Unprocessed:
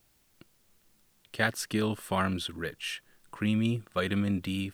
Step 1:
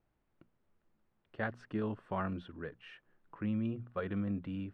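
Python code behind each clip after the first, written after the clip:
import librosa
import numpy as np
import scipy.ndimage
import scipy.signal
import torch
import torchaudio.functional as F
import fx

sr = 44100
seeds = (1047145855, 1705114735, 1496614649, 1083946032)

y = scipy.signal.sosfilt(scipy.signal.butter(2, 1400.0, 'lowpass', fs=sr, output='sos'), x)
y = fx.hum_notches(y, sr, base_hz=60, count=4)
y = y * librosa.db_to_amplitude(-6.5)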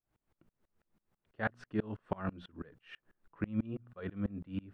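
y = fx.tremolo_decay(x, sr, direction='swelling', hz=6.1, depth_db=30)
y = y * librosa.db_to_amplitude(7.5)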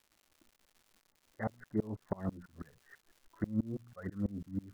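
y = fx.env_flanger(x, sr, rest_ms=3.6, full_db=-34.0)
y = fx.brickwall_lowpass(y, sr, high_hz=2100.0)
y = fx.dmg_crackle(y, sr, seeds[0], per_s=240.0, level_db=-54.0)
y = y * librosa.db_to_amplitude(1.0)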